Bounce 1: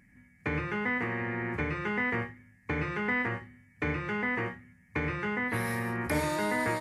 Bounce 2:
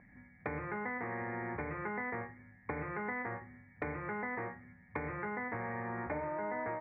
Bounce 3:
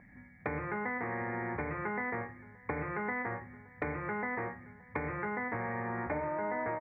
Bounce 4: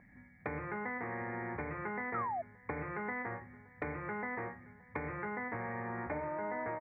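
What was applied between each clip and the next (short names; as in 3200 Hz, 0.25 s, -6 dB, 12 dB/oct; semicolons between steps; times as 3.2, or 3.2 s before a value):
steep low-pass 2300 Hz 72 dB/oct; bell 730 Hz +9.5 dB 1.2 oct; compressor 4:1, threshold -38 dBFS, peak gain reduction 14.5 dB
outdoor echo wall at 98 m, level -22 dB; gain +3 dB
painted sound fall, 2.14–2.42, 640–1400 Hz -33 dBFS; gain -3.5 dB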